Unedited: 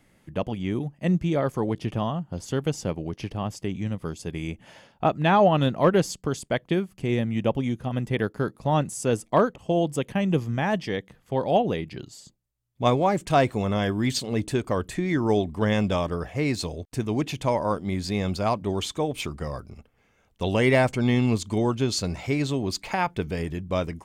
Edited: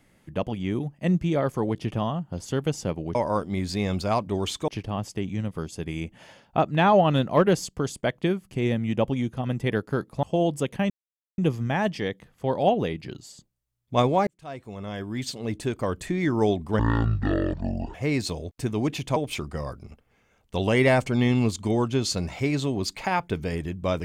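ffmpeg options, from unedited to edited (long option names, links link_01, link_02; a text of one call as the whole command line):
ffmpeg -i in.wav -filter_complex "[0:a]asplit=9[link_01][link_02][link_03][link_04][link_05][link_06][link_07][link_08][link_09];[link_01]atrim=end=3.152[link_10];[link_02]atrim=start=17.498:end=19.032[link_11];[link_03]atrim=start=3.148:end=8.702[link_12];[link_04]atrim=start=9.588:end=10.26,asetpts=PTS-STARTPTS,afade=type=out:start_time=0.668:duration=0.004:curve=hsin,apad=pad_dur=0.48[link_13];[link_05]atrim=start=10.26:end=13.15,asetpts=PTS-STARTPTS,afade=type=in:duration=0.004:curve=hsin,afade=type=out:start_time=2.886:duration=0.004:curve=hsin[link_14];[link_06]atrim=start=13.15:end=15.674,asetpts=PTS-STARTPTS,afade=type=in:duration=1.89[link_15];[link_07]atrim=start=15.67:end=16.28,asetpts=PTS-STARTPTS,asetrate=23373,aresample=44100[link_16];[link_08]atrim=start=16.276:end=17.502[link_17];[link_09]atrim=start=19.028[link_18];[link_10][link_11]acrossfade=duration=0.004:curve1=hsin:curve2=hsin[link_19];[link_19][link_12]acrossfade=duration=0.004:curve1=hsin:curve2=hsin[link_20];[link_13][link_14][link_15]concat=n=3:v=0:a=1[link_21];[link_20][link_21]acrossfade=duration=0.004:curve1=hsin:curve2=hsin[link_22];[link_22][link_16]acrossfade=duration=0.004:curve1=hsin:curve2=hsin[link_23];[link_23][link_17]acrossfade=duration=0.004:curve1=hsin:curve2=hsin[link_24];[link_24][link_18]acrossfade=duration=0.004:curve1=hsin:curve2=hsin" out.wav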